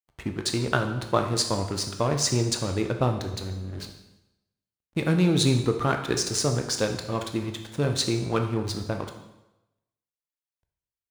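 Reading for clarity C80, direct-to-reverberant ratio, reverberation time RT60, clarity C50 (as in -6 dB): 10.5 dB, 4.5 dB, 0.95 s, 8.0 dB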